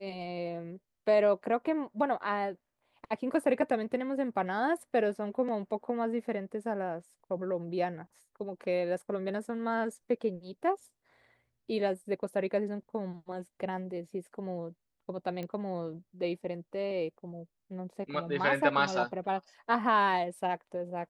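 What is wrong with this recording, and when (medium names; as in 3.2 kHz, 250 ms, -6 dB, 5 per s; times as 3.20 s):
15.43 s: pop -26 dBFS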